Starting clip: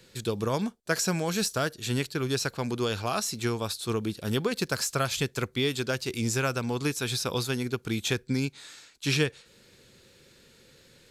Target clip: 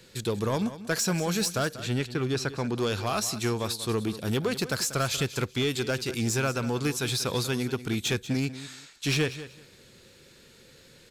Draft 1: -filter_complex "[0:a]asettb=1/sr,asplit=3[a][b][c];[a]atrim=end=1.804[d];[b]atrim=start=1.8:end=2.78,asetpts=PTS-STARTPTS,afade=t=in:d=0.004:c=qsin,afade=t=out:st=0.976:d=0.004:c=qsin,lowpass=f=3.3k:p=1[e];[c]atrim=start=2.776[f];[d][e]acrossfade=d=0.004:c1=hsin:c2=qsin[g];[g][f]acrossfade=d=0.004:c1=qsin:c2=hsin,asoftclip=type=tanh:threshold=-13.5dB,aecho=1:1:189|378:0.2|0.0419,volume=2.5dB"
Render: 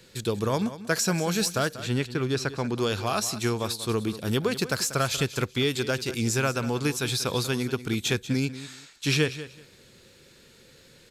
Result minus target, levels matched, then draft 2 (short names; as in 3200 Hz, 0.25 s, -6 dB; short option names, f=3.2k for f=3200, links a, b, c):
soft clip: distortion -12 dB
-filter_complex "[0:a]asettb=1/sr,asplit=3[a][b][c];[a]atrim=end=1.804[d];[b]atrim=start=1.8:end=2.78,asetpts=PTS-STARTPTS,afade=t=in:d=0.004:c=qsin,afade=t=out:st=0.976:d=0.004:c=qsin,lowpass=f=3.3k:p=1[e];[c]atrim=start=2.776[f];[d][e]acrossfade=d=0.004:c1=hsin:c2=qsin[g];[g][f]acrossfade=d=0.004:c1=qsin:c2=hsin,asoftclip=type=tanh:threshold=-22dB,aecho=1:1:189|378:0.2|0.0419,volume=2.5dB"